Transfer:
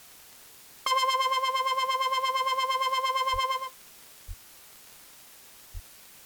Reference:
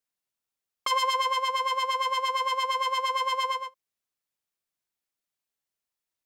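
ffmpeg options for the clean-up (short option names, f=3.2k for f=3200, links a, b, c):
-filter_complex "[0:a]adeclick=t=4,asplit=3[a][b][c];[a]afade=t=out:st=3.32:d=0.02[d];[b]highpass=f=140:w=0.5412,highpass=f=140:w=1.3066,afade=t=in:st=3.32:d=0.02,afade=t=out:st=3.44:d=0.02[e];[c]afade=t=in:st=3.44:d=0.02[f];[d][e][f]amix=inputs=3:normalize=0,asplit=3[g][h][i];[g]afade=t=out:st=4.27:d=0.02[j];[h]highpass=f=140:w=0.5412,highpass=f=140:w=1.3066,afade=t=in:st=4.27:d=0.02,afade=t=out:st=4.39:d=0.02[k];[i]afade=t=in:st=4.39:d=0.02[l];[j][k][l]amix=inputs=3:normalize=0,asplit=3[m][n][o];[m]afade=t=out:st=5.73:d=0.02[p];[n]highpass=f=140:w=0.5412,highpass=f=140:w=1.3066,afade=t=in:st=5.73:d=0.02,afade=t=out:st=5.85:d=0.02[q];[o]afade=t=in:st=5.85:d=0.02[r];[p][q][r]amix=inputs=3:normalize=0,afwtdn=0.0028,asetnsamples=n=441:p=0,asendcmd='5.43 volume volume -3.5dB',volume=0dB"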